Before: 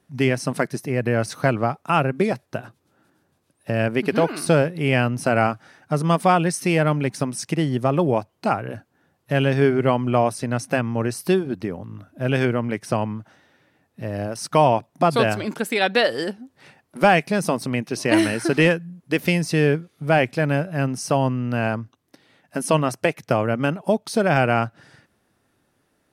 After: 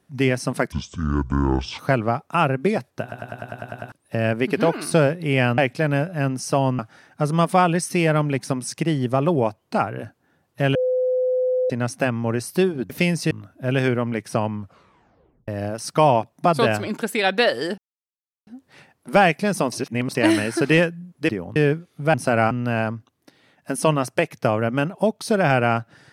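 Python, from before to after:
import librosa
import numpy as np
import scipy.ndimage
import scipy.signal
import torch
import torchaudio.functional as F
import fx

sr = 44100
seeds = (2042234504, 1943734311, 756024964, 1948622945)

y = fx.edit(x, sr, fx.speed_span(start_s=0.72, length_s=0.62, speed=0.58),
    fx.stutter_over(start_s=2.57, slice_s=0.1, count=9),
    fx.swap(start_s=5.13, length_s=0.37, other_s=20.16, other_length_s=1.21),
    fx.bleep(start_s=9.46, length_s=0.95, hz=508.0, db=-17.5),
    fx.swap(start_s=11.61, length_s=0.27, other_s=19.17, other_length_s=0.41),
    fx.tape_stop(start_s=13.12, length_s=0.93),
    fx.insert_silence(at_s=16.35, length_s=0.69),
    fx.reverse_span(start_s=17.6, length_s=0.43), tone=tone)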